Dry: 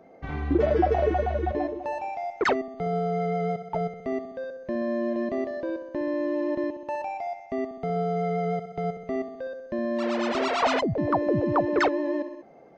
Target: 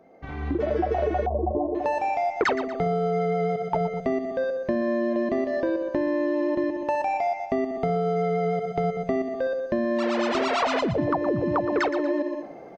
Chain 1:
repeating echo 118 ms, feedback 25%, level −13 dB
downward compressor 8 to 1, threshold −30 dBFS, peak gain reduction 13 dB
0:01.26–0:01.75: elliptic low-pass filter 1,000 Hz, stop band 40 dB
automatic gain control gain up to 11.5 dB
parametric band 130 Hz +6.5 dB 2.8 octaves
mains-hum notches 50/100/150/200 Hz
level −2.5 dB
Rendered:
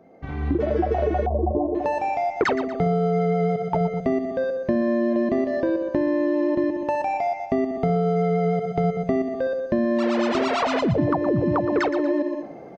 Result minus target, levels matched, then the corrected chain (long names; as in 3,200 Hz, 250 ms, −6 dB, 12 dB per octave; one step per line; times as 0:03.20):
125 Hz band +3.5 dB
repeating echo 118 ms, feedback 25%, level −13 dB
downward compressor 8 to 1, threshold −30 dBFS, peak gain reduction 13 dB
0:01.26–0:01.75: elliptic low-pass filter 1,000 Hz, stop band 40 dB
automatic gain control gain up to 11.5 dB
mains-hum notches 50/100/150/200 Hz
level −2.5 dB